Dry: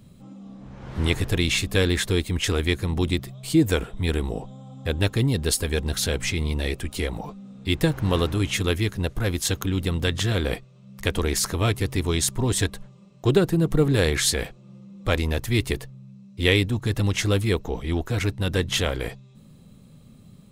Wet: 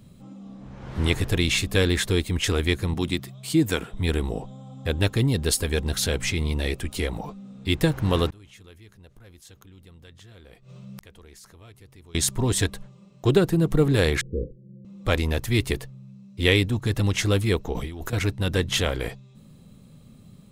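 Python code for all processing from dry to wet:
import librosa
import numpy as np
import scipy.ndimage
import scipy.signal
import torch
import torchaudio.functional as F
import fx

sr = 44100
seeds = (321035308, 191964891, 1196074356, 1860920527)

y = fx.chain(x, sr, fx.highpass(hz=120.0, slope=12),
    fx.peak_eq(hz=510.0, db=-4.5, octaves=1.1), at=(2.94, 3.92))
y = fx.chain(y, sr, fx.peak_eq(hz=280.0, db=-3.5, octaves=0.32),
    fx.gate_flip(shuts_db=-25.0, range_db=-37),
    fx.env_flatten(amount_pct=50), at=(8.3, 12.15))
y = fx.chain(y, sr, fx.steep_lowpass(hz=530.0, slope=96),
    fx.doubler(ms=17.0, db=-12.0), at=(14.21, 14.85))
y = fx.chain(y, sr, fx.high_shelf(hz=10000.0, db=10.0),
    fx.over_compress(threshold_db=-32.0, ratio=-1.0), at=(17.73, 18.13))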